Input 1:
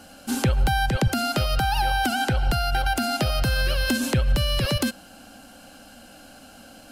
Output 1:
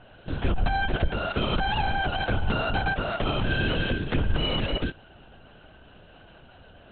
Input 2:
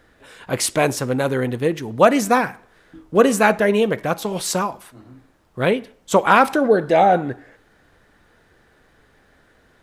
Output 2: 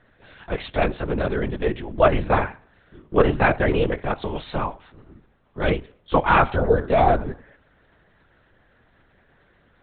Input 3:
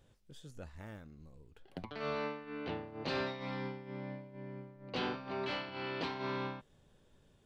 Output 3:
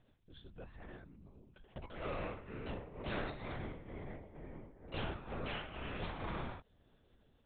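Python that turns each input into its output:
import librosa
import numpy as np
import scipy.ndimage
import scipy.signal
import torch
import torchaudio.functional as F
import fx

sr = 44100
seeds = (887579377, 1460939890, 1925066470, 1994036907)

y = fx.lpc_vocoder(x, sr, seeds[0], excitation='whisper', order=10)
y = y * librosa.db_to_amplitude(-3.0)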